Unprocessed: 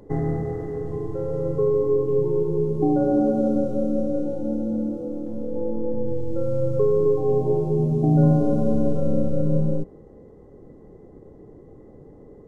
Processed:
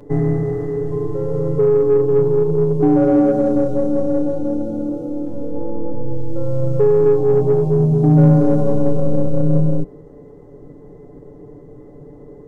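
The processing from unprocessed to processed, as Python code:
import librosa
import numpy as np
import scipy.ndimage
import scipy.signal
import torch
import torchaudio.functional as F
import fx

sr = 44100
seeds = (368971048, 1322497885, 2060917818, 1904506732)

p1 = x + 0.66 * np.pad(x, (int(6.9 * sr / 1000.0), 0))[:len(x)]
p2 = 10.0 ** (-17.0 / 20.0) * np.tanh(p1 / 10.0 ** (-17.0 / 20.0))
y = p1 + F.gain(torch.from_numpy(p2), -3.5).numpy()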